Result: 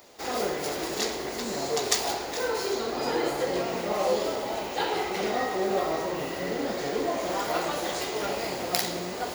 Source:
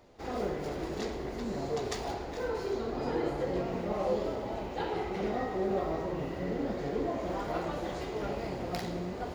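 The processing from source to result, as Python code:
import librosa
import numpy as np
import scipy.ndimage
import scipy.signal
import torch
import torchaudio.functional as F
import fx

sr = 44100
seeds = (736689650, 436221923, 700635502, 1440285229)

y = fx.riaa(x, sr, side='recording')
y = y * 10.0 ** (7.5 / 20.0)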